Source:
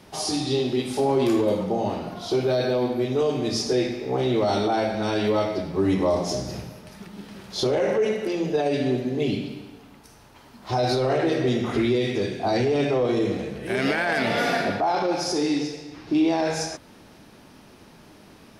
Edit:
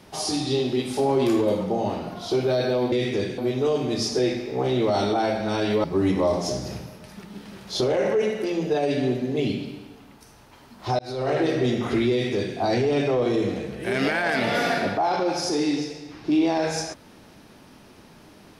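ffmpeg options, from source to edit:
-filter_complex "[0:a]asplit=5[s0][s1][s2][s3][s4];[s0]atrim=end=2.922[s5];[s1]atrim=start=11.938:end=12.402[s6];[s2]atrim=start=2.918:end=5.382[s7];[s3]atrim=start=5.668:end=10.82,asetpts=PTS-STARTPTS,afade=t=out:st=5.148:d=0.004:c=hsin[s8];[s4]atrim=start=10.82,asetpts=PTS-STARTPTS,afade=t=in:d=0.36[s9];[s5][s6]acrossfade=d=0.004:c1=hsin:c2=hsin[s10];[s10][s7]acrossfade=d=0.004:c1=hsin:c2=hsin[s11];[s8][s9]concat=n=2:v=0:a=1[s12];[s11][s12]acrossfade=d=0.004:c1=hsin:c2=hsin"

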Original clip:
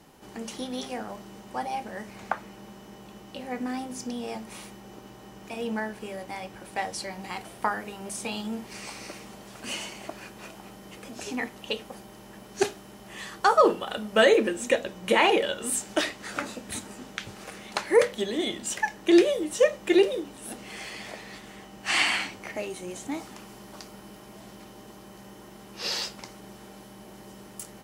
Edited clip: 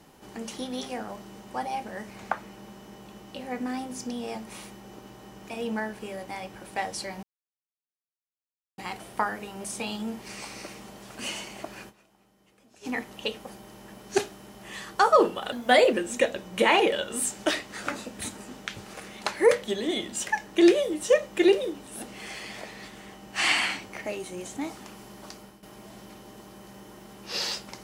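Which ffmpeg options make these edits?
-filter_complex "[0:a]asplit=7[s0][s1][s2][s3][s4][s5][s6];[s0]atrim=end=7.23,asetpts=PTS-STARTPTS,afade=t=out:st=7.226:d=0.004:c=hsin,apad=pad_dur=1.55[s7];[s1]atrim=start=7.23:end=10.51,asetpts=PTS-STARTPTS,afade=t=in:d=0.004:c=hsin,afade=t=out:st=3.11:d=0.17:c=exp:silence=0.11885[s8];[s2]atrim=start=10.51:end=11.14,asetpts=PTS-STARTPTS,volume=0.119[s9];[s3]atrim=start=11.14:end=13.974,asetpts=PTS-STARTPTS,afade=t=in:d=0.17:c=exp:silence=0.11885[s10];[s4]atrim=start=13.97:end=14.43,asetpts=PTS-STARTPTS,asetrate=49833,aresample=44100,atrim=end_sample=17952,asetpts=PTS-STARTPTS[s11];[s5]atrim=start=14.426:end=24.13,asetpts=PTS-STARTPTS,afade=t=out:st=9.354:d=0.35:c=qsin:silence=0.199526[s12];[s6]atrim=start=24.13,asetpts=PTS-STARTPTS,afade=t=in:d=0.004:c=hsin:silence=0.199526[s13];[s7][s8][s9][s10]concat=n=4:v=0:a=1[s14];[s14][s11]acrossfade=d=0.004:c1=hsin:c2=hsin[s15];[s12][s13]concat=n=2:v=0:a=1[s16];[s15][s16]acrossfade=d=0.004:c1=hsin:c2=hsin"

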